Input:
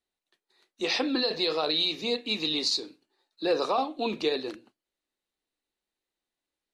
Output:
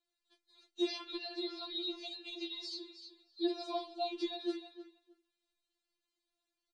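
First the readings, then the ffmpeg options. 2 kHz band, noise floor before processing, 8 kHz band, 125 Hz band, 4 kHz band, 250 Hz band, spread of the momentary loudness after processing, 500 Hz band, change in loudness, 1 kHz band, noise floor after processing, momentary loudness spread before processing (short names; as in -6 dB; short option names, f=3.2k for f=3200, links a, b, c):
-16.0 dB, under -85 dBFS, -17.5 dB, under -35 dB, -12.5 dB, -7.0 dB, 16 LU, -11.5 dB, -11.5 dB, -11.5 dB, under -85 dBFS, 8 LU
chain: -filter_complex "[0:a]equalizer=f=4.1k:w=2:g=5.5,alimiter=limit=-21dB:level=0:latency=1:release=376,aresample=22050,aresample=44100,asplit=2[a][b];[b]adelay=310,lowpass=f=3.1k:p=1,volume=-15dB,asplit=2[c][d];[d]adelay=310,lowpass=f=3.1k:p=1,volume=0.18[e];[a][c][e]amix=inputs=3:normalize=0,acrossover=split=820|1900[f][g][h];[f]acompressor=threshold=-33dB:ratio=4[i];[g]acompressor=threshold=-55dB:ratio=4[j];[h]acompressor=threshold=-41dB:ratio=4[k];[i][j][k]amix=inputs=3:normalize=0,afftfilt=real='re*4*eq(mod(b,16),0)':imag='im*4*eq(mod(b,16),0)':win_size=2048:overlap=0.75"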